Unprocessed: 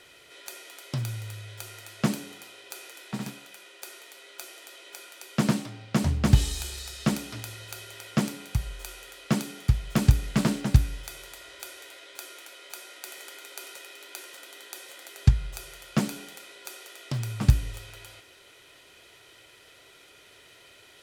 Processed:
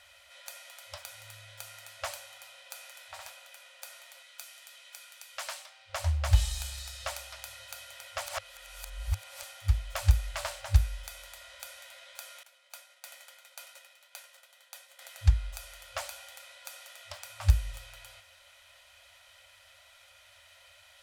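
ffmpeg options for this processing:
ffmpeg -i in.wav -filter_complex "[0:a]asettb=1/sr,asplit=3[link_01][link_02][link_03];[link_01]atrim=end=4.224[link_04];[link_02]atrim=start=4.22:end=5.9,asetpts=PTS-STARTPTS,afade=type=in:duration=0.004:curve=qsin,afade=type=out:start_time=1.676:duration=0.004:curve=qsin,highpass=frequency=1400:poles=1[link_05];[link_03]atrim=start=5.896[link_06];[link_04][link_05]acrossfade=duration=0.004:curve1=hsin:curve2=qsin[link_07];[link_07][link_06]acrossfade=duration=0.004:curve1=qsin:curve2=hsin,asettb=1/sr,asplit=3[link_08][link_09][link_10];[link_08]atrim=end=12.434[link_11];[link_09]atrim=start=12.43:end=14.99,asetpts=PTS-STARTPTS,afade=type=in:duration=0.004:curve=qsin,afade=type=out:start_time=2.556:duration=0.004:curve=qsin,agate=range=-33dB:threshold=-40dB:ratio=3:release=100:detection=peak[link_12];[link_10]atrim=start=14.986[link_13];[link_11][link_12]acrossfade=duration=0.004:curve1=hsin:curve2=qsin[link_14];[link_14][link_13]acrossfade=duration=0.004:curve1=qsin:curve2=hsin,asplit=3[link_15][link_16][link_17];[link_15]atrim=end=8.262[link_18];[link_16]atrim=start=8.258:end=9.432,asetpts=PTS-STARTPTS,areverse[link_19];[link_17]atrim=start=9.428[link_20];[link_18][link_19]acrossfade=duration=0.004:curve1=hsin:curve2=hsin[link_21];[link_21][link_20]acrossfade=duration=0.004:curve1=hsin:curve2=hsin,afftfilt=real='re*(1-between(b*sr/4096,100,520))':imag='im*(1-between(b*sr/4096,100,520))':win_size=4096:overlap=0.75,equalizer=frequency=110:width=0.77:gain=3.5,volume=-3.5dB" out.wav

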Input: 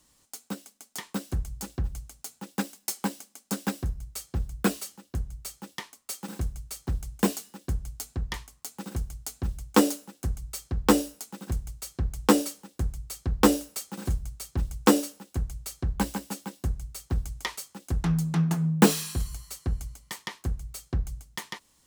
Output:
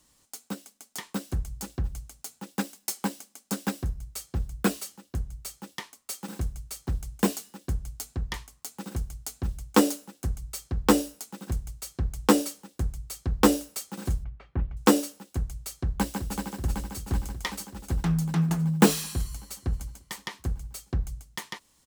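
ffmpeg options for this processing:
ffmpeg -i in.wav -filter_complex "[0:a]asettb=1/sr,asplit=3[link_01][link_02][link_03];[link_01]atrim=end=14.244[link_04];[link_02]atrim=start=14.24:end=14.77,asetpts=PTS-STARTPTS,afade=type=in:duration=0.004:curve=qsin,afade=type=out:start_time=0.526:duration=0.004:curve=qsin,lowpass=frequency=2400:width=0.5412,lowpass=frequency=2400:width=1.3066[link_05];[link_03]atrim=start=14.766[link_06];[link_04][link_05]acrossfade=duration=0.004:curve1=hsin:curve2=qsin[link_07];[link_07][link_06]acrossfade=duration=0.004:curve1=qsin:curve2=hsin,asplit=2[link_08][link_09];[link_09]afade=type=in:start_time=15.81:duration=0.01,afade=type=out:start_time=16.51:duration=0.01,aecho=0:1:380|760|1140|1520|1900|2280|2660|3040|3420|3800|4180|4560:0.501187|0.37589|0.281918|0.211438|0.158579|0.118934|0.0892006|0.0669004|0.0501753|0.0376315|0.0282236|0.0211677[link_10];[link_08][link_10]amix=inputs=2:normalize=0" out.wav

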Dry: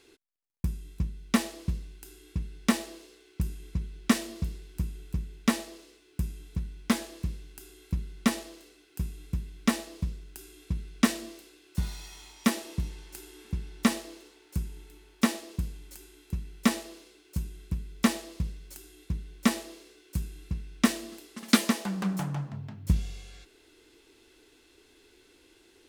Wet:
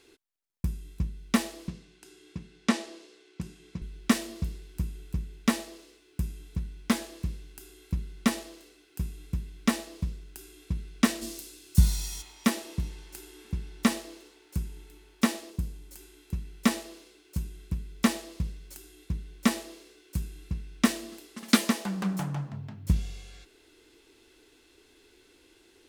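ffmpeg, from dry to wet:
ffmpeg -i in.wav -filter_complex "[0:a]asettb=1/sr,asplit=3[link_01][link_02][link_03];[link_01]atrim=end=1.684[link_04];[link_02]atrim=start=1.68:end=3.82,asetpts=PTS-STARTPTS,afade=type=in:duration=0.004:curve=qsin,afade=type=out:start_time=2.136:duration=0.004:curve=qsin,highpass=150,lowpass=7400[link_05];[link_03]atrim=start=3.816[link_06];[link_04][link_05]acrossfade=duration=0.004:curve1=hsin:curve2=qsin[link_07];[link_07][link_06]acrossfade=duration=0.004:curve1=qsin:curve2=hsin,asplit=3[link_08][link_09][link_10];[link_08]afade=type=out:start_time=11.21:duration=0.02[link_11];[link_09]bass=frequency=250:gain=11,treble=frequency=4000:gain=14,afade=type=in:start_time=11.21:duration=0.02,afade=type=out:start_time=12.21:duration=0.02[link_12];[link_10]afade=type=in:start_time=12.21:duration=0.02[link_13];[link_11][link_12][link_13]amix=inputs=3:normalize=0,asettb=1/sr,asplit=3[link_14][link_15][link_16];[link_14]atrim=end=15.504[link_17];[link_15]atrim=start=15.5:end=15.96,asetpts=PTS-STARTPTS,afade=type=in:duration=0.004:curve=qsin,afade=type=out:start_time=0.456:duration=0.004:curve=qsin,equalizer=frequency=2400:width=0.44:gain=-4.5[link_18];[link_16]atrim=start=15.956[link_19];[link_17][link_18]acrossfade=duration=0.004:curve1=hsin:curve2=qsin[link_20];[link_20][link_19]acrossfade=duration=0.004:curve1=qsin:curve2=hsin" out.wav

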